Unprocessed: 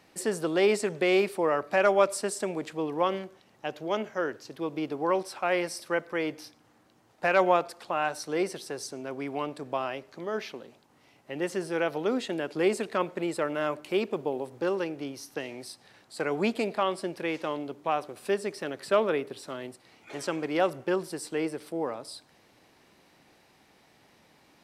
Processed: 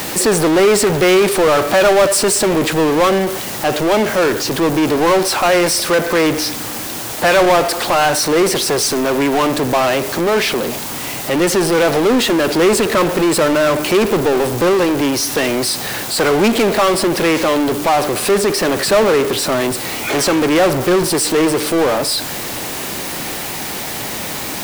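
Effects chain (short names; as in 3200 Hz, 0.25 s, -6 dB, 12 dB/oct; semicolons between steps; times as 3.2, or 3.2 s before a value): requantised 10-bit, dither triangular; power-law curve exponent 0.35; gain +4.5 dB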